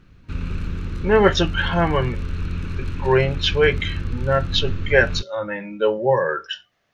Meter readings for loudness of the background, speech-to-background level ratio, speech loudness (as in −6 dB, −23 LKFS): −29.0 LKFS, 8.5 dB, −20.5 LKFS